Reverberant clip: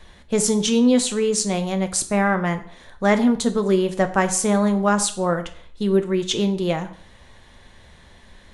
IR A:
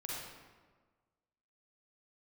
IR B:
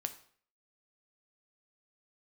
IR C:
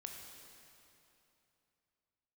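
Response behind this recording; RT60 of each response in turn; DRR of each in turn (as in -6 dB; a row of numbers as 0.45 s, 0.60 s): B; 1.4 s, 0.55 s, 2.9 s; -5.5 dB, 7.5 dB, 1.5 dB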